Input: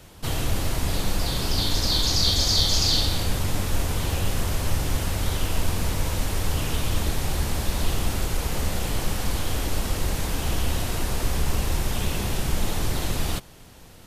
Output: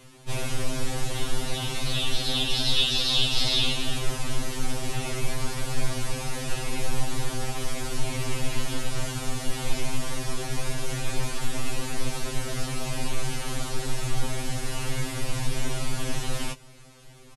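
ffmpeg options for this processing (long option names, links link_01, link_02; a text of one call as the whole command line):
ffmpeg -i in.wav -af "asetrate=35721,aresample=44100,afftfilt=real='re*2.45*eq(mod(b,6),0)':imag='im*2.45*eq(mod(b,6),0)':win_size=2048:overlap=0.75" out.wav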